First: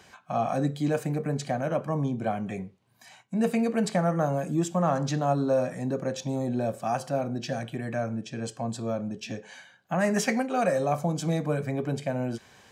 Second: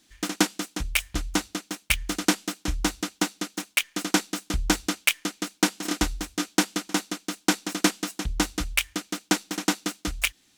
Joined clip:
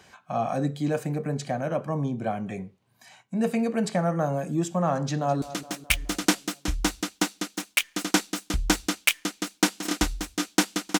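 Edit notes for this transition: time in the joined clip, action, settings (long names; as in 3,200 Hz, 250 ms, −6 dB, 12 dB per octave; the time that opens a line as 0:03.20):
first
0:05.01–0:05.42: delay throw 210 ms, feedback 60%, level −15 dB
0:05.42: continue with second from 0:01.42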